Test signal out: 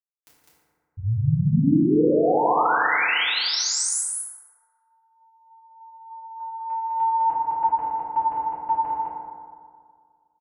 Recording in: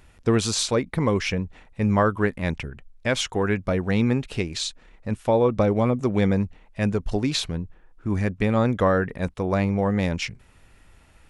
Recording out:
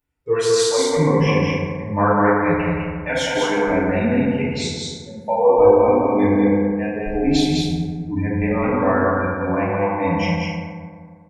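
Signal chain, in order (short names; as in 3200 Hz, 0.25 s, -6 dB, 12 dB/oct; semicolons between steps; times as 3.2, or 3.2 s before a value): spectral noise reduction 27 dB; loudspeakers at several distances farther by 58 m -10 dB, 70 m -3 dB; FDN reverb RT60 2 s, low-frequency decay 1.05×, high-frequency decay 0.35×, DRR -10 dB; gain -5.5 dB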